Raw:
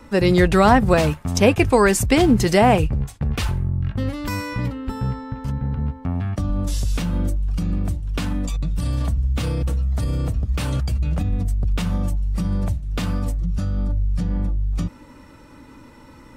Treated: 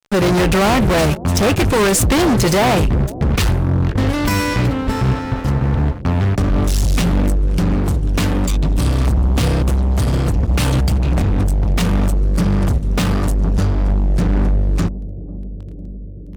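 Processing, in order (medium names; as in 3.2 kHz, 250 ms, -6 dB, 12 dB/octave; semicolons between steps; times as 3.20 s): fuzz box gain 26 dB, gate -35 dBFS; bucket-brigade echo 495 ms, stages 2048, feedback 78%, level -16 dB; trim +1 dB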